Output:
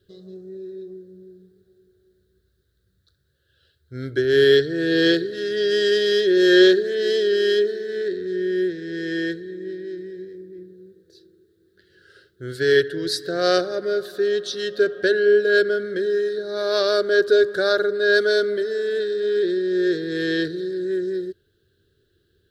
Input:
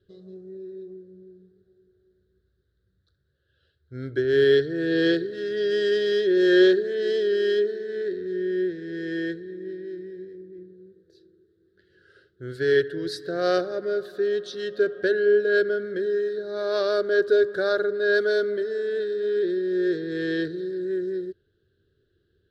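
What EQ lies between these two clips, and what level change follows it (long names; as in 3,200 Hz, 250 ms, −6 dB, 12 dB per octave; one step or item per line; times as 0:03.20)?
high-shelf EQ 3,500 Hz +11 dB
+3.0 dB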